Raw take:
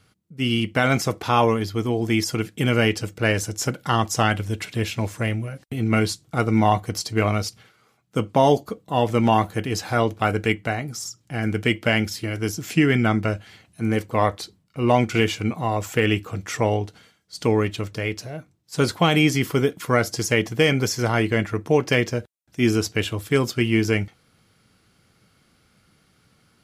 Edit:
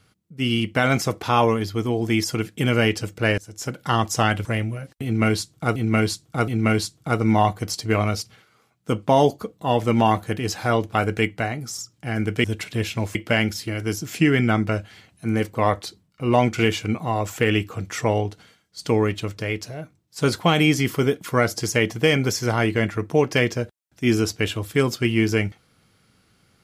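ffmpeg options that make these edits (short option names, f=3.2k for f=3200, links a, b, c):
-filter_complex "[0:a]asplit=7[a][b][c][d][e][f][g];[a]atrim=end=3.38,asetpts=PTS-STARTPTS,afade=t=out:st=3.376:d=0.004:c=hsin:silence=0.0707946[h];[b]atrim=start=3.38:end=4.452,asetpts=PTS-STARTPTS,afade=t=in:d=0.52:silence=0.0707946[i];[c]atrim=start=5.158:end=6.472[j];[d]atrim=start=5.748:end=6.472[k];[e]atrim=start=5.748:end=11.712[l];[f]atrim=start=4.448:end=5.162[m];[g]atrim=start=11.708[n];[h][i]concat=n=2:v=0:a=1[o];[o][j]acrossfade=d=0.004:c1=hsin:c2=hsin[p];[p][k]acrossfade=d=0.004:c1=hsin:c2=hsin[q];[q][l]acrossfade=d=0.004:c1=hsin:c2=hsin[r];[r][m]acrossfade=d=0.004:c1=hsin:c2=hsin[s];[s][n]acrossfade=d=0.004:c1=hsin:c2=hsin"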